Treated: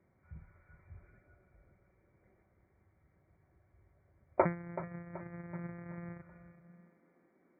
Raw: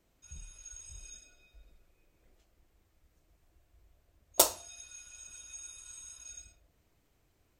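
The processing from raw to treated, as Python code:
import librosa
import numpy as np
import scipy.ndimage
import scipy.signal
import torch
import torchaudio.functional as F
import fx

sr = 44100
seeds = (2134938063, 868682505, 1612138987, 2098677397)

y = fx.sample_sort(x, sr, block=256, at=(4.45, 6.22))
y = fx.brickwall_lowpass(y, sr, high_hz=2400.0)
y = y + 0.36 * np.pad(y, (int(5.3 * sr / 1000.0), 0))[:len(y)]
y = fx.echo_feedback(y, sr, ms=379, feedback_pct=48, wet_db=-13.5)
y = fx.filter_sweep_highpass(y, sr, from_hz=98.0, to_hz=260.0, start_s=6.34, end_s=7.03, q=3.2)
y = y * 10.0 ** (1.0 / 20.0)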